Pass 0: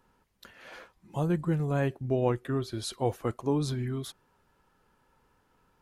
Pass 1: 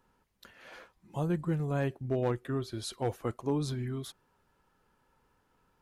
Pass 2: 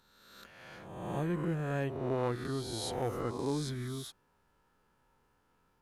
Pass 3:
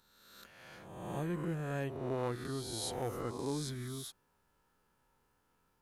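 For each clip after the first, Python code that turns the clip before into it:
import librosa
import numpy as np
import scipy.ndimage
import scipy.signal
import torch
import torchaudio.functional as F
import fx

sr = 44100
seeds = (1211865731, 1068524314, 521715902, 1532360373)

y1 = np.clip(x, -10.0 ** (-19.0 / 20.0), 10.0 ** (-19.0 / 20.0))
y1 = y1 * librosa.db_to_amplitude(-3.0)
y2 = fx.spec_swells(y1, sr, rise_s=1.24)
y2 = y2 * librosa.db_to_amplitude(-4.0)
y3 = fx.high_shelf(y2, sr, hz=6100.0, db=7.5)
y3 = y3 * librosa.db_to_amplitude(-3.5)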